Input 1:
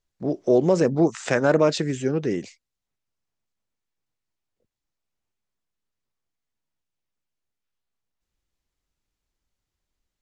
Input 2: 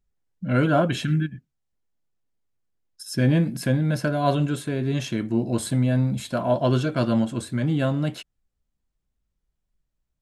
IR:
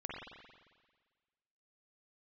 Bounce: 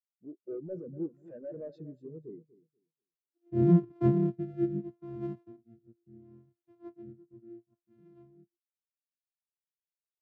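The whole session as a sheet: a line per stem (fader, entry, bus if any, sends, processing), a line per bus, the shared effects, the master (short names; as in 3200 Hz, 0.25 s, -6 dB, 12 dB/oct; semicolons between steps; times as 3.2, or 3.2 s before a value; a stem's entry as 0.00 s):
-8.5 dB, 0.00 s, no send, echo send -7.5 dB, vibrato 0.5 Hz 6.2 cents; overloaded stage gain 21.5 dB
1.06 s -12.5 dB -> 1.32 s 0 dB -> 5.26 s 0 dB -> 5.7 s -9.5 dB, 0.35 s, no send, no echo send, sample sorter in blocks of 128 samples; rotary speaker horn 0.75 Hz; flange 0.21 Hz, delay 0.8 ms, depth 2.6 ms, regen -89%; auto duck -23 dB, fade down 1.75 s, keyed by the first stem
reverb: off
echo: feedback echo 0.242 s, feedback 46%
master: spectral expander 2.5:1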